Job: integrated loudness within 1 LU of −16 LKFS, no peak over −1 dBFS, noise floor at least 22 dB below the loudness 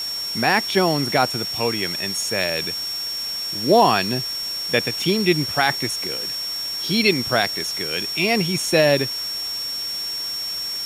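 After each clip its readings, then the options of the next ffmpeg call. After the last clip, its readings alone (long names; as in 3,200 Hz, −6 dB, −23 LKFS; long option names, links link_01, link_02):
interfering tone 5,500 Hz; level of the tone −25 dBFS; background noise floor −28 dBFS; target noise floor −43 dBFS; integrated loudness −20.5 LKFS; sample peak −4.0 dBFS; target loudness −16.0 LKFS
→ -af "bandreject=frequency=5500:width=30"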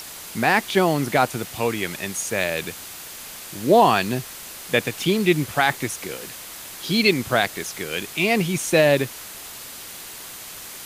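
interfering tone none found; background noise floor −38 dBFS; target noise floor −44 dBFS
→ -af "afftdn=noise_reduction=6:noise_floor=-38"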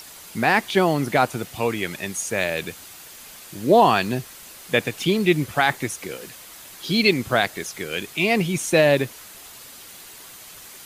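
background noise floor −43 dBFS; target noise floor −44 dBFS
→ -af "afftdn=noise_reduction=6:noise_floor=-43"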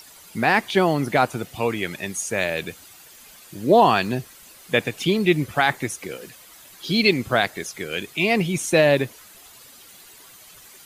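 background noise floor −47 dBFS; integrated loudness −21.5 LKFS; sample peak −5.0 dBFS; target loudness −16.0 LKFS
→ -af "volume=5.5dB,alimiter=limit=-1dB:level=0:latency=1"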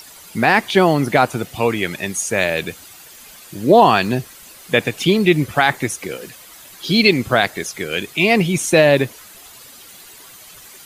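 integrated loudness −16.5 LKFS; sample peak −1.0 dBFS; background noise floor −42 dBFS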